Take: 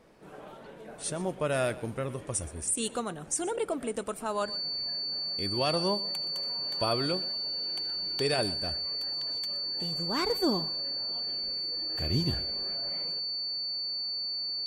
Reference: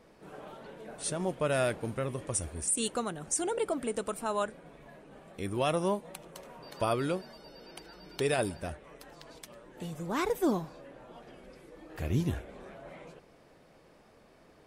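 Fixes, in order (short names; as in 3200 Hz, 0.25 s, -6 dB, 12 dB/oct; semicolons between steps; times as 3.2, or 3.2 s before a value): notch 4500 Hz, Q 30; inverse comb 0.122 s -18 dB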